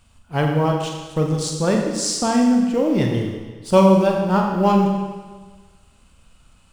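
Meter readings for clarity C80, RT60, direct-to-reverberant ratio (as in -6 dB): 4.5 dB, 1.4 s, 1.0 dB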